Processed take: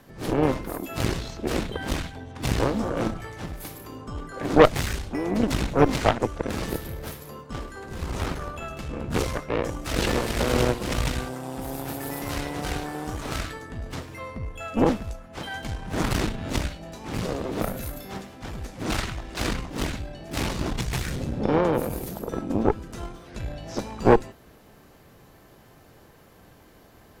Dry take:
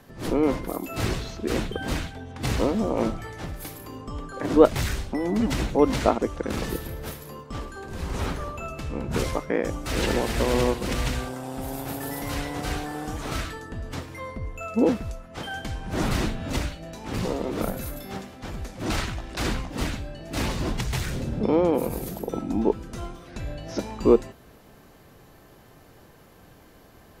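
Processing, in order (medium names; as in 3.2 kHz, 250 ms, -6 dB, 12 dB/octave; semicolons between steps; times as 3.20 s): harmony voices +4 st -11 dB; Chebyshev shaper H 6 -12 dB, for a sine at -1.5 dBFS; trim -1 dB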